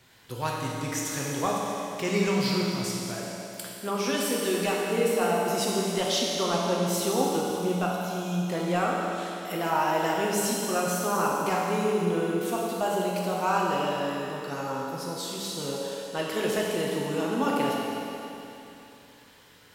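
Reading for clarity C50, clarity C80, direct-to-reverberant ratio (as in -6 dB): -1.5 dB, 0.0 dB, -4.0 dB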